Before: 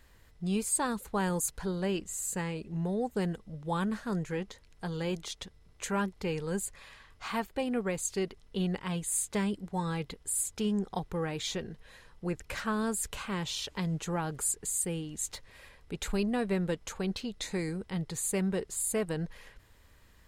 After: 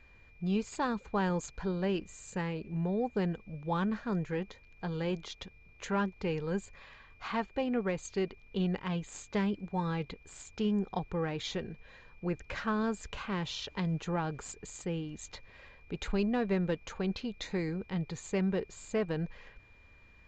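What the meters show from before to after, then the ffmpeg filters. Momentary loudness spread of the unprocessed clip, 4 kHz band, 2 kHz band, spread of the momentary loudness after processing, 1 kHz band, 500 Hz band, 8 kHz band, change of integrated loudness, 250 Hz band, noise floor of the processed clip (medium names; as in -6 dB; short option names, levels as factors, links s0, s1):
9 LU, -3.0 dB, -1.0 dB, 12 LU, 0.0 dB, 0.0 dB, -15.0 dB, -1.5 dB, 0.0 dB, -59 dBFS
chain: -af "adynamicsmooth=sensitivity=2.5:basefreq=4200,aresample=16000,aresample=44100,aeval=exprs='val(0)+0.000891*sin(2*PI*2400*n/s)':c=same"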